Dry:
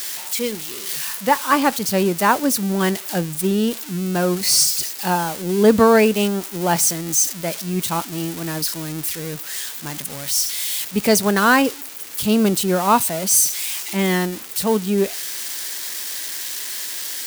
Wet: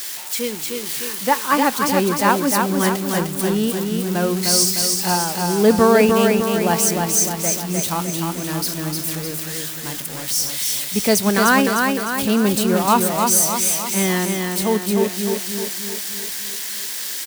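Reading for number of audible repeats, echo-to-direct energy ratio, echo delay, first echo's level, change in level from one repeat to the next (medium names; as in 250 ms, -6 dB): 6, -2.5 dB, 304 ms, -4.0 dB, -5.5 dB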